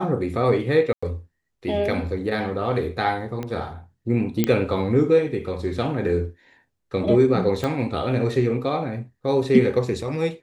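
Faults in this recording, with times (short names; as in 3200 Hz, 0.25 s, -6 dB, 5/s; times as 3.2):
0.93–1.02 gap 95 ms
3.43 pop -17 dBFS
4.44 pop -6 dBFS
7.64 pop -12 dBFS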